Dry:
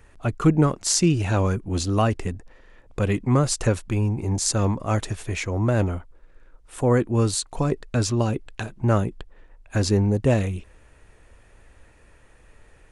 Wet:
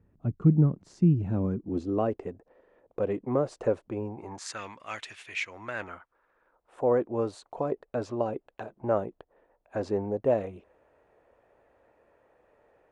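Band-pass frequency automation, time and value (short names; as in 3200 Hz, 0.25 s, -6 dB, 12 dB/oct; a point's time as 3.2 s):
band-pass, Q 1.6
1.18 s 170 Hz
2.22 s 520 Hz
4.04 s 520 Hz
4.65 s 2500 Hz
5.46 s 2500 Hz
6.83 s 610 Hz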